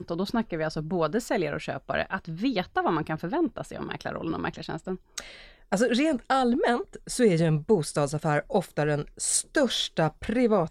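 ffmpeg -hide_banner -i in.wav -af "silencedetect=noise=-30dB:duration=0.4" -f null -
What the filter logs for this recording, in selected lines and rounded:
silence_start: 5.20
silence_end: 5.72 | silence_duration: 0.52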